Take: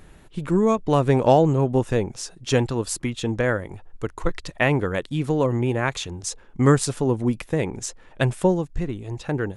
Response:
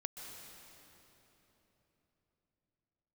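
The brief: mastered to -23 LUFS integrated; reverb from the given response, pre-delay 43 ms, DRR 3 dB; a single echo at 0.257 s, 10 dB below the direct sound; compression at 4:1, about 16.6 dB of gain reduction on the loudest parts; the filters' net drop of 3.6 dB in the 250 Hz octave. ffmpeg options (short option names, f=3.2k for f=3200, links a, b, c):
-filter_complex "[0:a]equalizer=f=250:t=o:g=-5,acompressor=threshold=-33dB:ratio=4,aecho=1:1:257:0.316,asplit=2[a][b];[1:a]atrim=start_sample=2205,adelay=43[c];[b][c]afir=irnorm=-1:irlink=0,volume=-1.5dB[d];[a][d]amix=inputs=2:normalize=0,volume=11dB"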